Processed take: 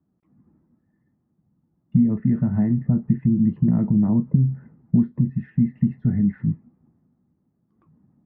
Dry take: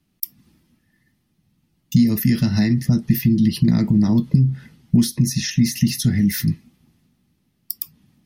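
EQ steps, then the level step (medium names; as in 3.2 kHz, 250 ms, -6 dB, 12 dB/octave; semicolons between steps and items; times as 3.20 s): high-pass 120 Hz 6 dB/octave; Bessel low-pass 860 Hz, order 6; dynamic bell 330 Hz, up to -5 dB, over -38 dBFS, Q 2.8; 0.0 dB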